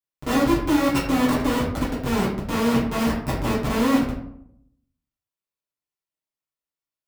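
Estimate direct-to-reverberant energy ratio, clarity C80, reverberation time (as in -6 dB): -9.0 dB, 7.5 dB, 0.70 s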